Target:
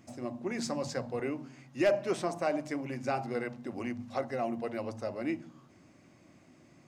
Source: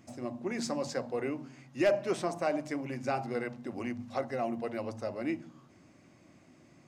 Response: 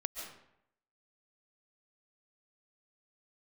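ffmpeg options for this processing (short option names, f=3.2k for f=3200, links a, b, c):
-filter_complex "[0:a]asettb=1/sr,asplit=3[a][b][c];[a]atrim=end=0.434[d];[b]atrim=start=0.43:end=1.2,asetpts=PTS-STARTPTS,afade=t=in:d=0.004:c=qsin,afade=t=out:st=0.766:d=0.004:c=qsin,asubboost=boost=9.5:cutoff=180[e];[c]atrim=start=1.196[f];[d][e]acrossfade=d=0.004:c1=hsin:c2=qsin[g];[g][f]acrossfade=d=0.004:c1=qsin:c2=hsin"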